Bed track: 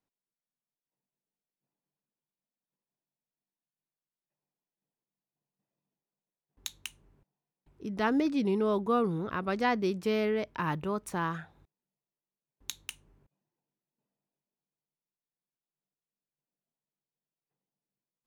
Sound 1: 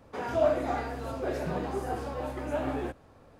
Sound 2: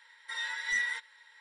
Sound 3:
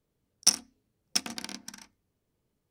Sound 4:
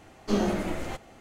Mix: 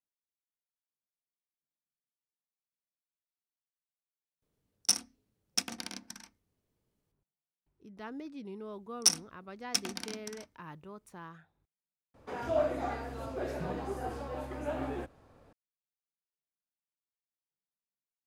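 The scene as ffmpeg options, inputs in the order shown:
ffmpeg -i bed.wav -i cue0.wav -i cue1.wav -i cue2.wav -filter_complex "[3:a]asplit=2[link_01][link_02];[0:a]volume=-15.5dB[link_03];[link_01]alimiter=limit=-5.5dB:level=0:latency=1:release=71[link_04];[link_03]asplit=3[link_05][link_06][link_07];[link_05]atrim=end=4.424[link_08];[link_04]atrim=end=2.7,asetpts=PTS-STARTPTS,volume=-3dB[link_09];[link_06]atrim=start=7.116:end=12.144[link_10];[1:a]atrim=end=3.39,asetpts=PTS-STARTPTS,volume=-4.5dB[link_11];[link_07]atrim=start=15.526[link_12];[link_02]atrim=end=2.7,asetpts=PTS-STARTPTS,volume=-2.5dB,afade=type=in:duration=0.004:curve=hsin,afade=type=out:start_time=2.696:duration=0.004:curve=hsin,adelay=8590[link_13];[link_08][link_09]acrossfade=duration=0.004:curve1=hsin:curve2=hsin[link_14];[link_14][link_10]acrossfade=duration=0.004:curve1=hsin:curve2=hsin[link_15];[link_15][link_11]acrossfade=duration=0.004:curve1=hsin:curve2=hsin[link_16];[link_16][link_12]acrossfade=duration=0.004:curve1=hsin:curve2=hsin[link_17];[link_17][link_13]amix=inputs=2:normalize=0" out.wav

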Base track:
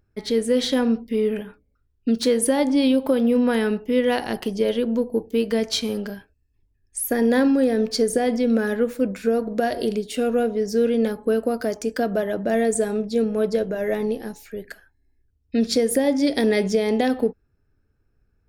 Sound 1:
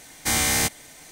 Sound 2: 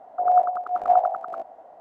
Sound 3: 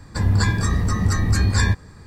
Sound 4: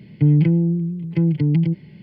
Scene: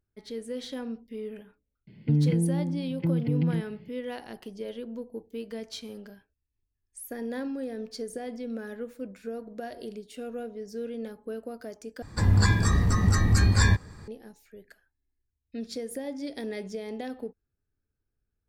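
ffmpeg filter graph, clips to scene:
ffmpeg -i bed.wav -i cue0.wav -i cue1.wav -i cue2.wav -i cue3.wav -filter_complex "[0:a]volume=-15.5dB,asplit=2[link_01][link_02];[link_01]atrim=end=12.024[link_03];[3:a]atrim=end=2.06,asetpts=PTS-STARTPTS,volume=-2.5dB[link_04];[link_02]atrim=start=14.076[link_05];[4:a]atrim=end=2.02,asetpts=PTS-STARTPTS,volume=-8.5dB,afade=type=in:duration=0.004:curve=hsin,afade=type=out:start_time=2.016:duration=0.004:curve=hsin,adelay=1870[link_06];[link_03][link_04]acrossfade=duration=0.004:curve1=hsin:curve2=hsin[link_07];[link_07][link_05]acrossfade=duration=0.004:curve1=hsin:curve2=hsin[link_08];[link_08][link_06]amix=inputs=2:normalize=0" out.wav

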